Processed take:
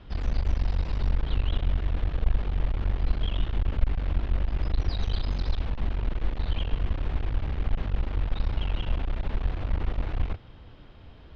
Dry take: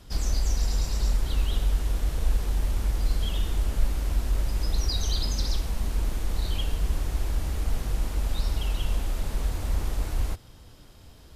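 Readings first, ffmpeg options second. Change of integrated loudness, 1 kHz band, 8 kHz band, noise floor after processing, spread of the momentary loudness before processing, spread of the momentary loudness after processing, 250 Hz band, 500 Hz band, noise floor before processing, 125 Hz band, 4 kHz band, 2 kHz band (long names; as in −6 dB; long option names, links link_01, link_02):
−1.0 dB, 0.0 dB, below −20 dB, −47 dBFS, 4 LU, 3 LU, +0.5 dB, 0.0 dB, −49 dBFS, 0.0 dB, −6.0 dB, 0.0 dB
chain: -af "aeval=exprs='clip(val(0),-1,0.0237)':channel_layout=same,lowpass=frequency=3300:width=0.5412,lowpass=frequency=3300:width=1.3066,volume=2dB"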